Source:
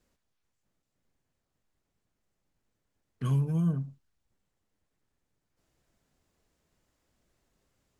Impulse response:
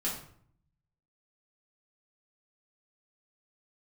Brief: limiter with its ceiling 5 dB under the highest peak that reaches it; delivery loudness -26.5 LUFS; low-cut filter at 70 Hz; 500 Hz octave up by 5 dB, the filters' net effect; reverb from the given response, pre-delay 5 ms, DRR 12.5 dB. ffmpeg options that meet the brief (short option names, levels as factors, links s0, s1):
-filter_complex "[0:a]highpass=70,equalizer=f=500:t=o:g=6,alimiter=level_in=1.06:limit=0.0631:level=0:latency=1,volume=0.944,asplit=2[s0][s1];[1:a]atrim=start_sample=2205,adelay=5[s2];[s1][s2]afir=irnorm=-1:irlink=0,volume=0.141[s3];[s0][s3]amix=inputs=2:normalize=0,volume=2.24"